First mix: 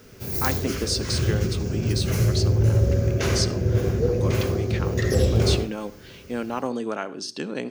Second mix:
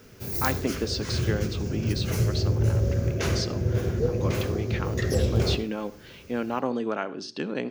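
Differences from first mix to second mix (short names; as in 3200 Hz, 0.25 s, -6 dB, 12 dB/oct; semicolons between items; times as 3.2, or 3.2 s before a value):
speech: add LPF 4000 Hz 12 dB/oct; background: send -9.0 dB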